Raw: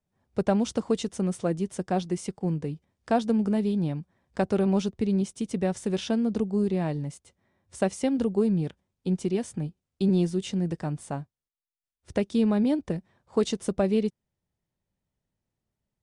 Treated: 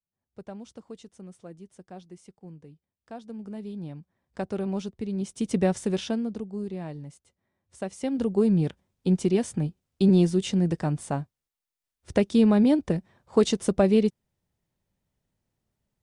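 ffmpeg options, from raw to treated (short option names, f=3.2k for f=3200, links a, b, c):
-af "volume=16.5dB,afade=t=in:st=3.22:d=1.19:silence=0.281838,afade=t=in:st=5.16:d=0.39:silence=0.298538,afade=t=out:st=5.55:d=0.84:silence=0.237137,afade=t=in:st=7.89:d=0.75:silence=0.251189"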